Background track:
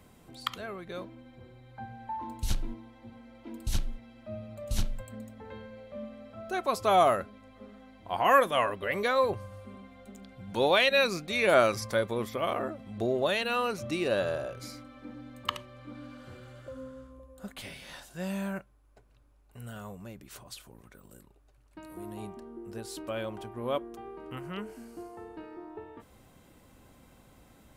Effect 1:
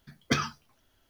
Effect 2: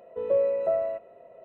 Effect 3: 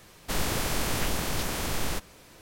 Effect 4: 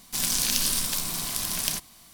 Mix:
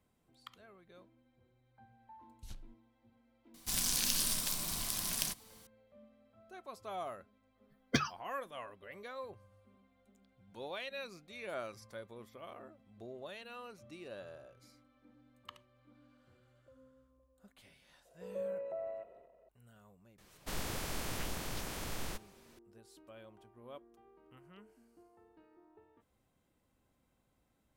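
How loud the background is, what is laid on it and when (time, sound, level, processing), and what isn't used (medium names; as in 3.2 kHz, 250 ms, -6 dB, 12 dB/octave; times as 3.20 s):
background track -19.5 dB
3.54 s: add 4 -8 dB
7.63 s: add 1 -3.5 dB + expander on every frequency bin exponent 2
18.05 s: add 2 -16.5 dB + transient shaper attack -1 dB, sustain +10 dB
20.18 s: add 3 -11 dB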